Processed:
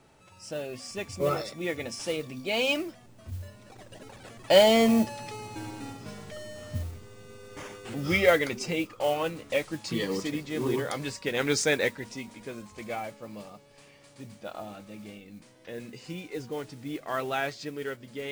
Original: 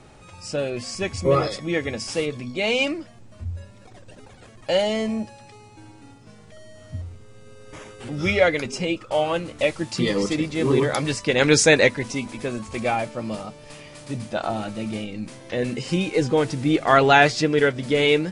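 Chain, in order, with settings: Doppler pass-by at 5.68 s, 14 m/s, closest 10 m; bass shelf 99 Hz -8 dB; modulation noise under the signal 22 dB; trim +8.5 dB

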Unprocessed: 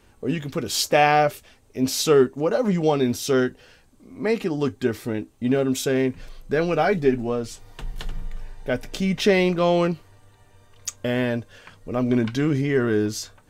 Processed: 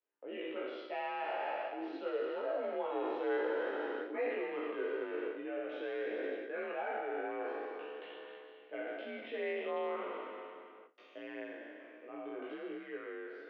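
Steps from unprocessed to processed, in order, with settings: spectral sustain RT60 2.84 s; Doppler pass-by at 3.73 s, 11 m/s, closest 4.5 m; gate with hold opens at -50 dBFS; reverse; compression 6:1, threshold -38 dBFS, peak gain reduction 18.5 dB; reverse; chorus voices 2, 0.24 Hz, delay 17 ms, depth 1.6 ms; mistuned SSB +51 Hz 260–2900 Hz; trim +6.5 dB

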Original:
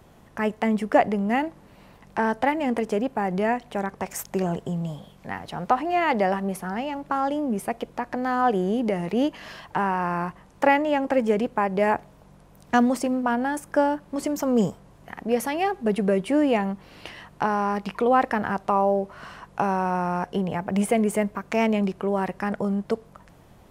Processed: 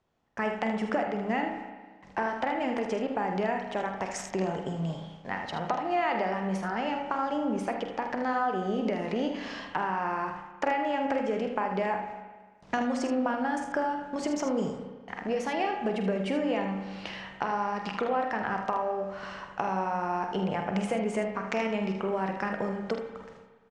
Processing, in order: low-pass 6.8 kHz 24 dB/octave; gate with hold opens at -39 dBFS; bass shelf 310 Hz -6.5 dB; compression, threshold -27 dBFS, peak gain reduction 12.5 dB; early reflections 48 ms -10.5 dB, 78 ms -8.5 dB; reverberation RT60 1.4 s, pre-delay 31 ms, DRR 6 dB

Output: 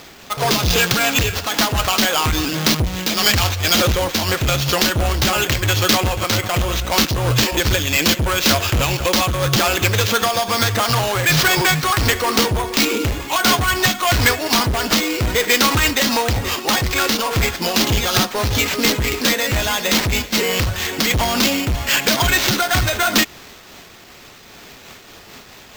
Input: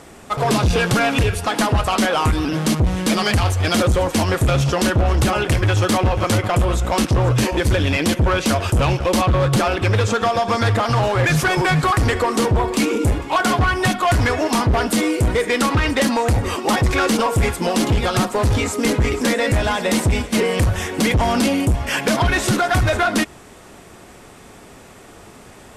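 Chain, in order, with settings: peaking EQ 4.5 kHz +13.5 dB 2.3 oct; sample-rate reducer 9.9 kHz, jitter 0%; random flutter of the level, depth 60%

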